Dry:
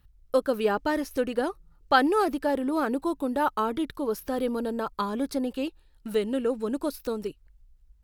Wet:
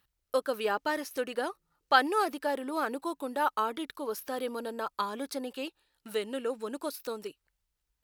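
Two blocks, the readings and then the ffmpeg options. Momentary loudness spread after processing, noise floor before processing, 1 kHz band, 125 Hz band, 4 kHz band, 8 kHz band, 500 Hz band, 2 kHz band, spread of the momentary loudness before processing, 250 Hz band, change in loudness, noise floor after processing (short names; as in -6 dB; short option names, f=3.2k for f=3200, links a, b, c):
11 LU, -60 dBFS, -2.5 dB, n/a, 0.0 dB, 0.0 dB, -5.5 dB, -1.0 dB, 9 LU, -10.0 dB, -4.5 dB, -83 dBFS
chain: -af "highpass=f=810:p=1"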